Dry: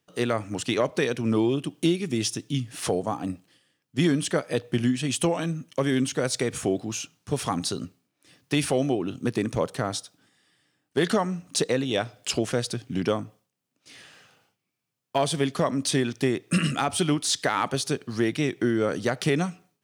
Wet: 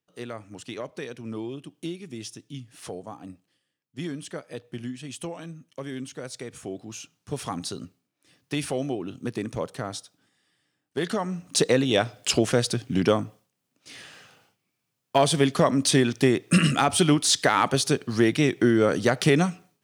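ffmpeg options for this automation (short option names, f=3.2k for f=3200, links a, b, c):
-af "volume=4dB,afade=t=in:st=6.63:d=0.67:silence=0.473151,afade=t=in:st=11.16:d=0.54:silence=0.375837"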